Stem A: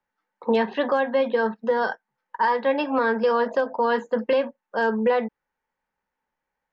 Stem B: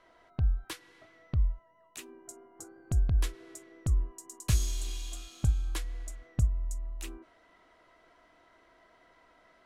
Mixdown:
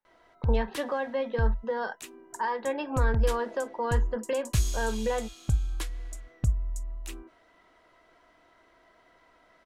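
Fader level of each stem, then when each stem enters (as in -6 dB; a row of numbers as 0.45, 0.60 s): -8.5, +1.0 dB; 0.00, 0.05 s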